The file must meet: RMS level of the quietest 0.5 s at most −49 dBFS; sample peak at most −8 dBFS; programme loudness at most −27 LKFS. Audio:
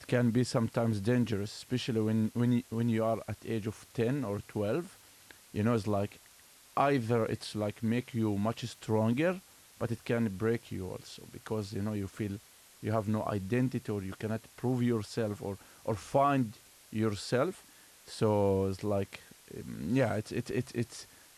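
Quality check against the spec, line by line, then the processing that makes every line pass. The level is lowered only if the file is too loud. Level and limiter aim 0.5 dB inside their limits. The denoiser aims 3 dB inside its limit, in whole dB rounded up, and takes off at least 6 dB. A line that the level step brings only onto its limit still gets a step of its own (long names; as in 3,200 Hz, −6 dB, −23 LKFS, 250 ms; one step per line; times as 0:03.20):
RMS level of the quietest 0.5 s −59 dBFS: in spec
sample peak −14.5 dBFS: in spec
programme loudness −33.0 LKFS: in spec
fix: no processing needed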